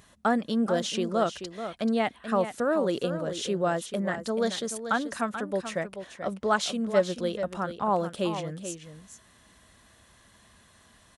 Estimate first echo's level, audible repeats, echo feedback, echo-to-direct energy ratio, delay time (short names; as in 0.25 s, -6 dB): -10.0 dB, 1, no steady repeat, -10.0 dB, 0.434 s